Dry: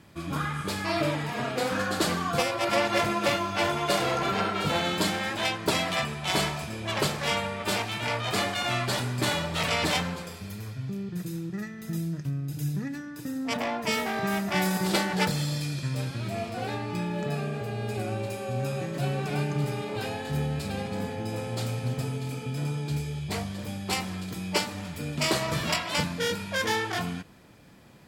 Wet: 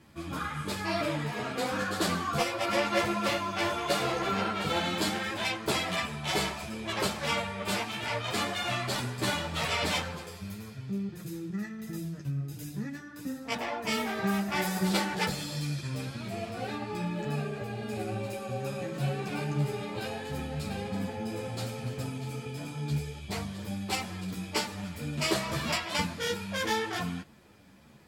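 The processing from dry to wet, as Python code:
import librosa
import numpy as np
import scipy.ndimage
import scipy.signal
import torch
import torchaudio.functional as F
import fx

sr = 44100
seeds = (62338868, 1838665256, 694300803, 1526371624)

y = fx.ensemble(x, sr)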